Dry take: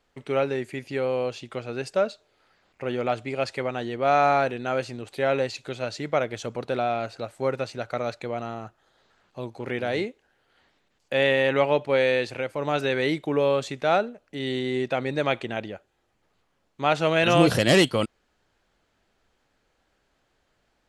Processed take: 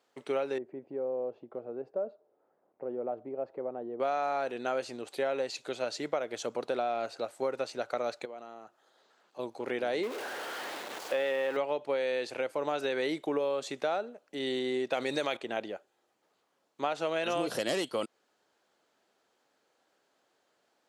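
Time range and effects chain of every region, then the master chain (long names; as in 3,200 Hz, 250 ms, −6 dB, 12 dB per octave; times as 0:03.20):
0:00.58–0:04.00: Chebyshev low-pass filter 610 Hz + downward compressor 1.5 to 1, threshold −38 dBFS
0:08.25–0:09.39: high-pass filter 150 Hz + downward compressor 2 to 1, threshold −49 dBFS
0:10.03–0:11.57: converter with a step at zero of −28.5 dBFS + bass and treble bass −7 dB, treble −10 dB
0:14.93–0:15.37: high-shelf EQ 2,700 Hz +11.5 dB + envelope flattener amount 50%
whole clip: high-pass filter 330 Hz 12 dB per octave; parametric band 2,200 Hz −5 dB 1.4 octaves; downward compressor 12 to 1, threshold −27 dBFS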